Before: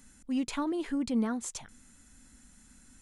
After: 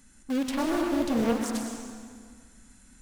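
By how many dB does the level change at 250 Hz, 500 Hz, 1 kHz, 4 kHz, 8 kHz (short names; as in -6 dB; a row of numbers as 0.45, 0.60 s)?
+4.0, +9.0, +7.0, +5.5, +2.0 dB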